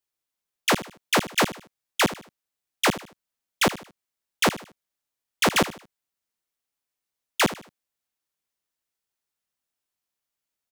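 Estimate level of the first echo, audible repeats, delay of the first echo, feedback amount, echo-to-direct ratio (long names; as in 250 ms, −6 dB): −15.0 dB, 3, 76 ms, 34%, −14.5 dB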